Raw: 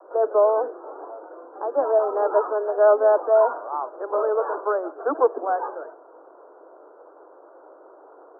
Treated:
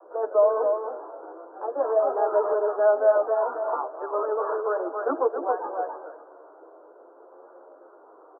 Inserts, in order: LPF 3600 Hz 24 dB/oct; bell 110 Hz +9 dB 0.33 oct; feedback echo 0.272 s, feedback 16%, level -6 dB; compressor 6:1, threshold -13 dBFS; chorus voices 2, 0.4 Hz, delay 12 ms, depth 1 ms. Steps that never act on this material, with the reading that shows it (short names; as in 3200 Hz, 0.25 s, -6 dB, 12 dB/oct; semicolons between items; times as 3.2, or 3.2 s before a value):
LPF 3600 Hz: input band ends at 1500 Hz; bell 110 Hz: input band starts at 250 Hz